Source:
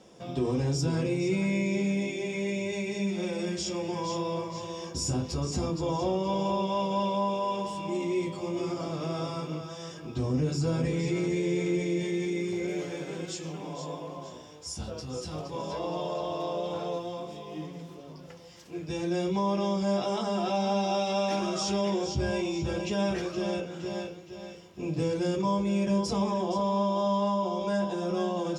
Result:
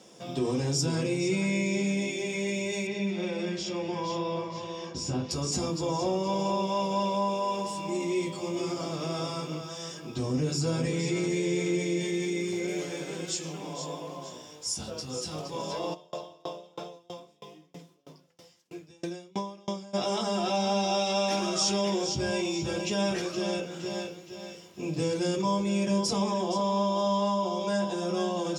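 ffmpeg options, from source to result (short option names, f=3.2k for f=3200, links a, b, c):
-filter_complex "[0:a]asettb=1/sr,asplit=3[a][b][c];[a]atrim=end=2.874[d];[b]atrim=start=2.87:end=5.31,asetpts=PTS-STARTPTS,afade=t=in:d=0.004:c=qsin,afade=t=out:st=2.436:d=0.004:c=qsin,lowpass=3.6k[e];[c]atrim=start=5.306[f];[d][e]acrossfade=d=0.004:c1=hsin:c2=qsin[g];[g][f]acrossfade=d=0.004:c1=qsin:c2=hsin,asettb=1/sr,asplit=3[h][i][j];[h]atrim=end=5.854[k];[i]atrim=start=5.85:end=8.08,asetpts=PTS-STARTPTS,afade=t=in:d=0.004:c=qsin,afade=t=out:st=2.226:d=0.004:c=qsin,equalizer=f=3.2k:w=5.1:g=-7[l];[j]atrim=start=8.076[m];[k][l]acrossfade=d=0.004:c1=hsin:c2=qsin[n];[n][m]acrossfade=d=0.004:c1=qsin:c2=hsin,asplit=3[o][p][q];[o]afade=t=out:st=15.93:d=0.02[r];[p]aeval=exprs='val(0)*pow(10,-32*if(lt(mod(3.1*n/s,1),2*abs(3.1)/1000),1-mod(3.1*n/s,1)/(2*abs(3.1)/1000),(mod(3.1*n/s,1)-2*abs(3.1)/1000)/(1-2*abs(3.1)/1000))/20)':c=same,afade=t=in:st=15.93:d=0.02,afade=t=out:st=19.93:d=0.02[s];[q]afade=t=in:st=19.93:d=0.02[t];[r][s][t]amix=inputs=3:normalize=0,highpass=120,highshelf=f=3.7k:g=9"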